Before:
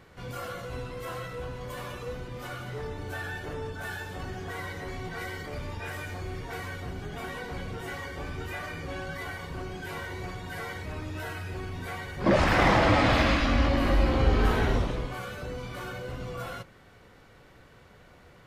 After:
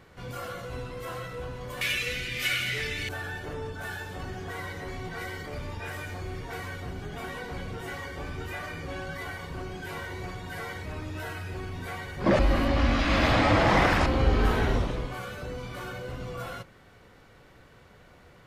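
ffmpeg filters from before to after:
-filter_complex "[0:a]asettb=1/sr,asplit=3[s0][s1][s2];[s0]atrim=end=1.814[s3];[s1]atrim=start=1.81:end=3.09,asetpts=PTS-STARTPTS,afade=t=in:d=0.004:c=qsin,afade=t=out:st=1.276:d=0.004:c=qsin,highshelf=f=1500:t=q:w=3:g=14[s4];[s2]atrim=start=3.086[s5];[s3][s4]acrossfade=d=0.004:c1=hsin:c2=qsin[s6];[s6][s5]acrossfade=d=0.004:c1=qsin:c2=hsin,asplit=3[s7][s8][s9];[s7]atrim=end=12.392[s10];[s8]atrim=start=12.388:end=14.062,asetpts=PTS-STARTPTS,areverse[s11];[s9]atrim=start=14.058[s12];[s10][s11]acrossfade=d=0.004:c1=hsin:c2=hsin[s13];[s13][s12]acrossfade=d=0.004:c1=hsin:c2=hsin"

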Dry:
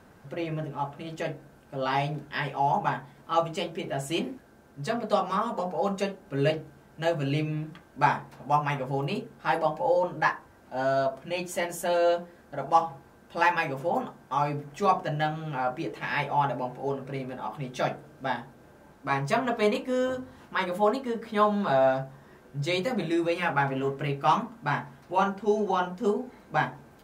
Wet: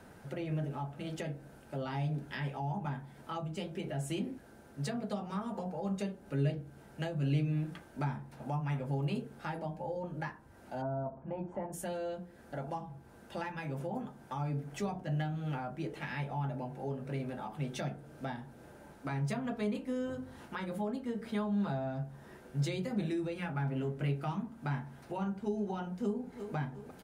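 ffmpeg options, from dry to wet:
-filter_complex "[0:a]asplit=3[s0][s1][s2];[s0]afade=t=out:st=10.81:d=0.02[s3];[s1]lowpass=f=950:t=q:w=3.1,afade=t=in:st=10.81:d=0.02,afade=t=out:st=11.72:d=0.02[s4];[s2]afade=t=in:st=11.72:d=0.02[s5];[s3][s4][s5]amix=inputs=3:normalize=0,asplit=2[s6][s7];[s7]afade=t=in:st=25.88:d=0.01,afade=t=out:st=26.55:d=0.01,aecho=0:1:350|700|1050|1400|1750|2100|2450:0.158489|0.103018|0.0669617|0.0435251|0.0282913|0.0183894|0.0119531[s8];[s6][s8]amix=inputs=2:normalize=0,equalizer=f=9500:t=o:w=0.21:g=6.5,bandreject=f=1100:w=10,acrossover=split=240[s9][s10];[s10]acompressor=threshold=0.01:ratio=6[s11];[s9][s11]amix=inputs=2:normalize=0"

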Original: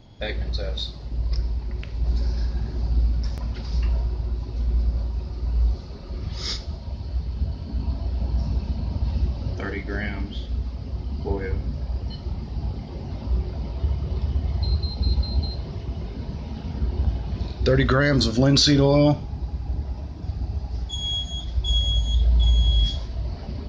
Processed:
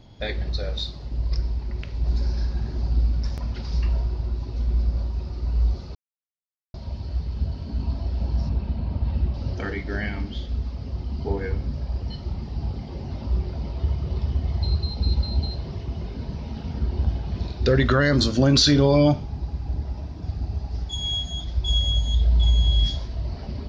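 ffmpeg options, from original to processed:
-filter_complex "[0:a]asettb=1/sr,asplit=3[s0][s1][s2];[s0]atrim=end=8.494[s3];[s1]atrim=start=8.49:end=9.34,asetpts=PTS-STARTPTS,afade=t=in:d=0.004:c=qsin,afade=t=out:st=0.846:d=0.004:c=qsin,lowpass=3300[s4];[s2]atrim=start=9.336[s5];[s3][s4]acrossfade=d=0.004:c1=hsin:c2=qsin[s6];[s6][s5]acrossfade=d=0.004:c1=qsin:c2=hsin,asplit=3[s7][s8][s9];[s7]atrim=end=5.95,asetpts=PTS-STARTPTS,afade=t=out:st=5.946:d=0.004:c=hsin[s10];[s8]atrim=start=5.95:end=6.74,asetpts=PTS-STARTPTS,volume=0[s11];[s9]atrim=start=6.74,asetpts=PTS-STARTPTS,afade=t=in:d=0.004:c=hsin[s12];[s10][s11][s12]concat=n=3:v=0:a=1"

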